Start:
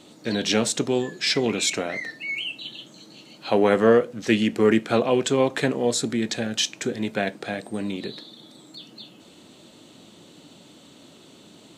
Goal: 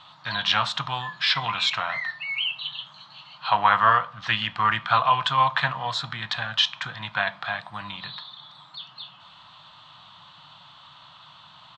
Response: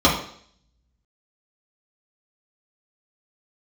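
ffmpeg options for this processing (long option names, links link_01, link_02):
-filter_complex "[0:a]firequalizer=gain_entry='entry(150,0);entry(240,-22);entry(410,-29);entry(650,-3);entry(1000,15);entry(2200,1);entry(3400,8);entry(6100,-12);entry(9300,-25)':delay=0.05:min_phase=1,asplit=2[link_01][link_02];[1:a]atrim=start_sample=2205[link_03];[link_02][link_03]afir=irnorm=-1:irlink=0,volume=-36dB[link_04];[link_01][link_04]amix=inputs=2:normalize=0,volume=-1.5dB"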